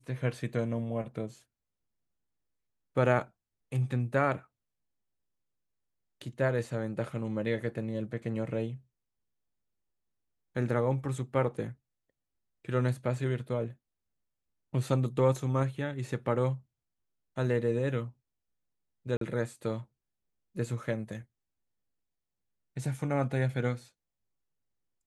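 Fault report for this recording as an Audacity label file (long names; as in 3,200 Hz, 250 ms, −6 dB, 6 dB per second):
19.170000	19.210000	drop-out 43 ms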